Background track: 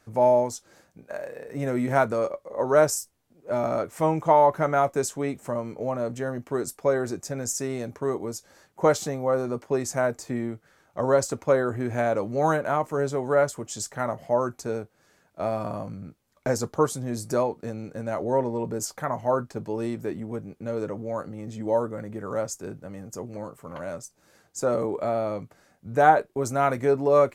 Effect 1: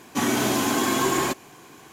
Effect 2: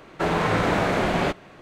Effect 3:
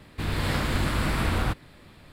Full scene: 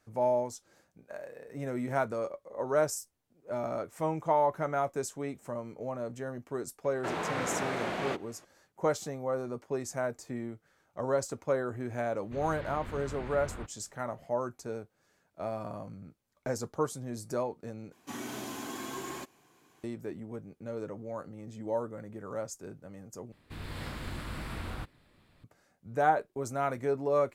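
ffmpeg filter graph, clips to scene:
-filter_complex "[3:a]asplit=2[s0][s1];[0:a]volume=0.376[s2];[2:a]highpass=f=280:p=1[s3];[s0]lowpass=2900[s4];[s2]asplit=3[s5][s6][s7];[s5]atrim=end=17.924[s8];[1:a]atrim=end=1.92,asetpts=PTS-STARTPTS,volume=0.141[s9];[s6]atrim=start=19.836:end=23.324[s10];[s1]atrim=end=2.12,asetpts=PTS-STARTPTS,volume=0.211[s11];[s7]atrim=start=25.436[s12];[s3]atrim=end=1.61,asetpts=PTS-STARTPTS,volume=0.316,afade=t=in:d=0.004:c=hsin,afade=t=out:st=1.606:d=0.004:c=hsin,adelay=6840[s13];[s4]atrim=end=2.12,asetpts=PTS-STARTPTS,volume=0.15,afade=t=in:d=0.004:c=hsin,afade=t=out:st=2.116:d=0.004:c=hsin,adelay=12130[s14];[s8][s9]acrossfade=d=0.004:c1=hsin:c2=hsin[s15];[s15][s10]acrossfade=d=0.004:c1=hsin:c2=hsin[s16];[s16][s11]acrossfade=d=0.004:c1=hsin:c2=hsin[s17];[s17][s12]acrossfade=d=0.004:c1=hsin:c2=hsin[s18];[s18][s13][s14]amix=inputs=3:normalize=0"

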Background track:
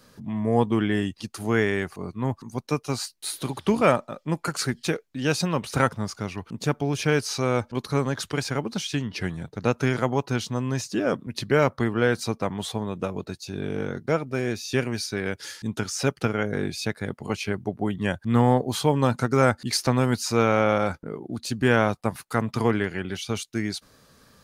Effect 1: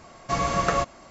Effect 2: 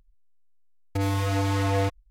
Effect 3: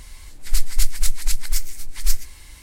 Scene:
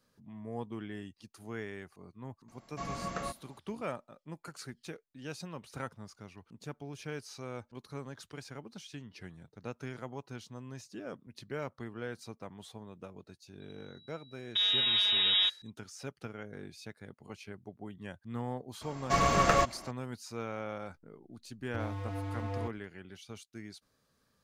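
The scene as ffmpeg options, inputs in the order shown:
-filter_complex "[1:a]asplit=2[s0][s1];[2:a]asplit=2[s2][s3];[0:a]volume=0.119[s4];[s0]equalizer=f=220:w=2.1:g=7.5[s5];[s2]lowpass=f=3300:t=q:w=0.5098,lowpass=f=3300:t=q:w=0.6013,lowpass=f=3300:t=q:w=0.9,lowpass=f=3300:t=q:w=2.563,afreqshift=-3900[s6];[s1]aeval=exprs='clip(val(0),-1,0.0631)':c=same[s7];[s3]lowpass=f=1500:p=1[s8];[s5]atrim=end=1.1,asetpts=PTS-STARTPTS,volume=0.178,afade=t=in:d=0.004:c=hsin,afade=t=out:st=1.096:d=0.004:c=hsin,adelay=2480[s9];[s6]atrim=end=2.1,asetpts=PTS-STARTPTS,volume=0.668,afade=t=in:d=0.004:c=hsin,afade=t=out:st=2.096:d=0.004:c=hsin,adelay=13600[s10];[s7]atrim=end=1.1,asetpts=PTS-STARTPTS,volume=0.944,afade=t=in:d=0.004:c=hsin,afade=t=out:st=1.096:d=0.004:c=hsin,adelay=18810[s11];[s8]atrim=end=2.1,asetpts=PTS-STARTPTS,volume=0.237,afade=t=in:d=0.004:c=hsin,afade=t=out:st=2.096:d=0.004:c=hsin,adelay=20790[s12];[s4][s9][s10][s11][s12]amix=inputs=5:normalize=0"

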